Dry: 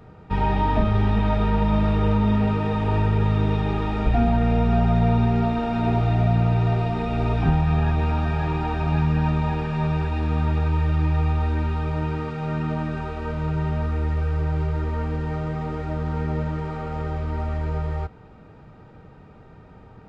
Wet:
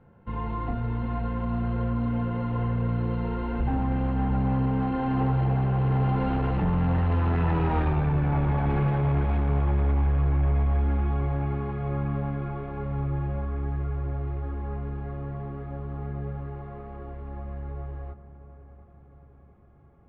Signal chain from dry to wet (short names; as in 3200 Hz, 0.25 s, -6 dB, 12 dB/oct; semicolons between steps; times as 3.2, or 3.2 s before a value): Doppler pass-by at 7.8, 39 m/s, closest 19 m; in parallel at +3 dB: compressor, threshold -38 dBFS, peak gain reduction 18.5 dB; on the sum: limiter -21 dBFS, peak gain reduction 10 dB; hard clip -28.5 dBFS, distortion -12 dB; air absorption 470 m; on a send: dark delay 0.701 s, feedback 48%, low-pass 1800 Hz, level -13.5 dB; on the sum: gain +8 dB